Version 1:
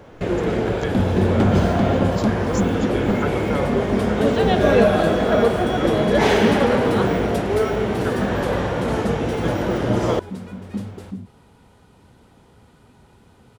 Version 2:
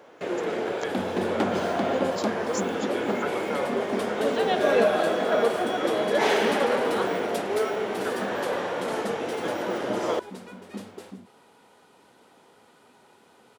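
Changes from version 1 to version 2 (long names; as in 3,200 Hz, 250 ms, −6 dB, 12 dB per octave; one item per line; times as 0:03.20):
first sound −4.0 dB
master: add high-pass filter 370 Hz 12 dB per octave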